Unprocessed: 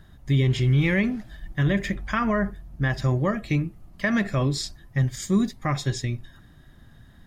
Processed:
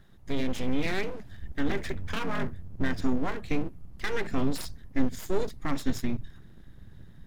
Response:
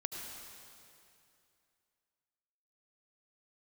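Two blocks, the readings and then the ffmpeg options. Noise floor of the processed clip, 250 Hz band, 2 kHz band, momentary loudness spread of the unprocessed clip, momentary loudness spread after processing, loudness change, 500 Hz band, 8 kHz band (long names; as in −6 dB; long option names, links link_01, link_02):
−50 dBFS, −5.5 dB, −7.0 dB, 10 LU, 8 LU, −7.5 dB, −4.0 dB, −7.5 dB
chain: -af "asubboost=boost=3:cutoff=210,aeval=exprs='abs(val(0))':channel_layout=same,volume=-5.5dB"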